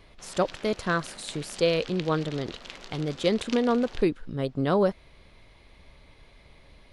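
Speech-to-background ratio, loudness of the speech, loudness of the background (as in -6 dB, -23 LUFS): 15.5 dB, -27.5 LUFS, -43.0 LUFS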